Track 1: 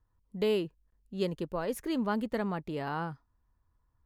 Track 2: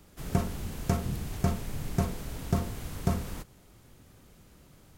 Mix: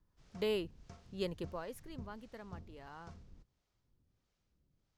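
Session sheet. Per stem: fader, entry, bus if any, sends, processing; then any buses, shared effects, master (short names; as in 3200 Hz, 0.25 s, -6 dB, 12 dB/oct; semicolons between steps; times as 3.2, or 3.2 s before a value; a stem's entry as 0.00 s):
1.44 s -3 dB -> 1.9 s -15.5 dB, 0.00 s, no send, low shelf 360 Hz -9 dB
-16.0 dB, 0.00 s, no send, ladder low-pass 6700 Hz, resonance 35%; harmonic tremolo 1.5 Hz, depth 70%, crossover 490 Hz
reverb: off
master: low shelf 120 Hz +7.5 dB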